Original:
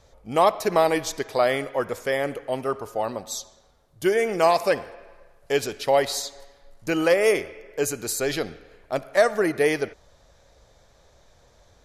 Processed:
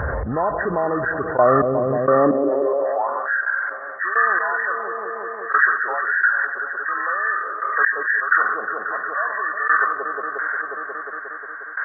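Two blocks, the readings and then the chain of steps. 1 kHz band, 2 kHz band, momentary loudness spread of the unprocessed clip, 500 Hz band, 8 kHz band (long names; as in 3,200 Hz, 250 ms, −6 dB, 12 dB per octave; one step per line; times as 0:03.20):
+6.0 dB, +12.5 dB, 11 LU, 0.0 dB, below −40 dB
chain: hearing-aid frequency compression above 1,000 Hz 4 to 1
gate pattern "x.....x.." 65 BPM −24 dB
on a send: delay with a low-pass on its return 179 ms, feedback 72%, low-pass 580 Hz, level −15 dB
on the sum: high-pass filter sweep 73 Hz → 1,700 Hz, 0:01.68–0:03.43
envelope flattener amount 70%
level +4 dB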